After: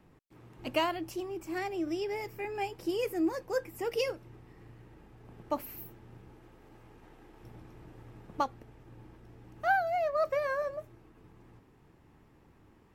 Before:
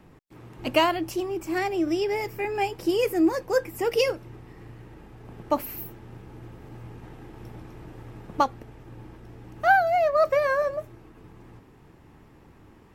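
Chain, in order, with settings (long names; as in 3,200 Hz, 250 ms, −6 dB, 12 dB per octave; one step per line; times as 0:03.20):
0:06.34–0:07.44: parametric band 110 Hz −9.5 dB 1.9 octaves
level −8.5 dB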